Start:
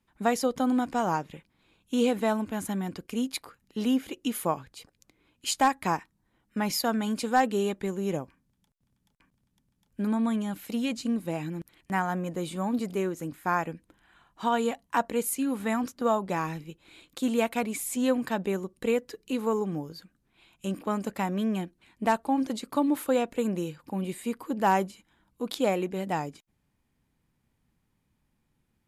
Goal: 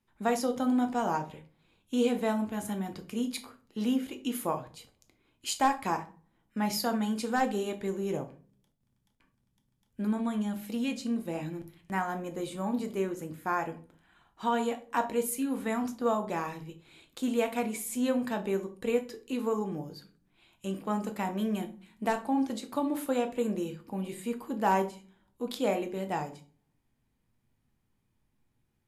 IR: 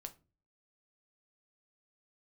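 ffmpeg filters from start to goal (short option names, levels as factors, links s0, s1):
-filter_complex "[0:a]asettb=1/sr,asplit=3[s0][s1][s2];[s0]atrim=end=21.374[s3];[s1]atrim=start=21.37:end=22.08,asetpts=PTS-STARTPTS,afade=t=in:d=0.004:c=qsin,afade=t=out:st=0.706:d=0.004:c=qsin,highshelf=f=8300:g=8[s4];[s2]atrim=start=22.076[s5];[s3][s4]acrossfade=d=0.004:c1=hsin:c2=qsin[s6];[s6][s5]acrossfade=d=0.004:c1=qsin:c2=hsin[s7];[1:a]atrim=start_sample=2205,asetrate=31752,aresample=44100[s8];[s7][s8]afir=irnorm=-1:irlink=0"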